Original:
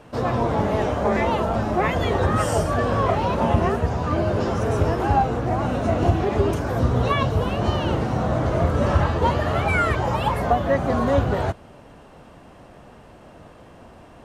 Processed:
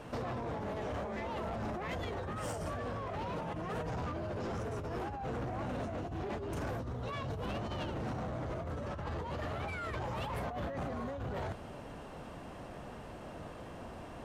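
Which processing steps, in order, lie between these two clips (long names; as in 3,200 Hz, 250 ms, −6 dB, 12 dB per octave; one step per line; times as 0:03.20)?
0:03.33–0:03.96: comb filter 6.4 ms, depth 64%
compressor whose output falls as the input rises −28 dBFS, ratio −1
soft clipping −26.5 dBFS, distortion −11 dB
level −7 dB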